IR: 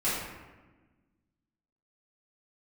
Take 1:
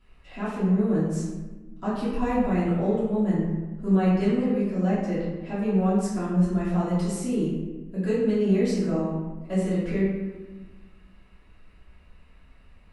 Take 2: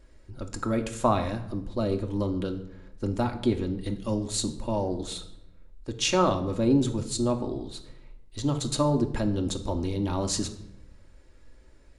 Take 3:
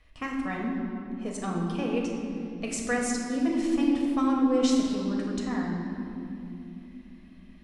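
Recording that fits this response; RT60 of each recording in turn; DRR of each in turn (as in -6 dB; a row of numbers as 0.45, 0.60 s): 1; 1.3 s, 0.80 s, not exponential; -12.0, 3.5, -2.0 dB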